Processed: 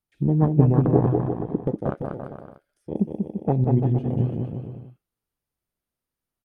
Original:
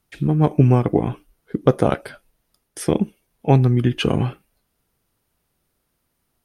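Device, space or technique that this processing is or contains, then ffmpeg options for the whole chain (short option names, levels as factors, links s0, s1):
de-esser from a sidechain: -filter_complex "[0:a]asettb=1/sr,asplit=3[s0][s1][s2];[s0]atrim=end=1.064[s3];[s1]atrim=start=1.06:end=1.96,asetpts=PTS-STARTPTS,afade=t=in:d=0.004:c=qsin,afade=t=out:st=0.896:d=0.004:c=qsin,lowpass=9100[s4];[s2]atrim=start=1.956[s5];[s3][s4]acrossfade=d=0.004:c1=hsin:c2=qsin[s6];[s6][s5]acrossfade=d=0.004:c1=qsin:c2=hsin,asplit=2[s7][s8];[s8]highpass=f=5100:w=0.5412,highpass=f=5100:w=1.3066,apad=whole_len=284089[s9];[s7][s9]sidechaincompress=threshold=0.00126:ratio=4:attack=2.2:release=73,afwtdn=0.0501,aecho=1:1:190|342|463.6|560.9|638.7:0.631|0.398|0.251|0.158|0.1,volume=0.841"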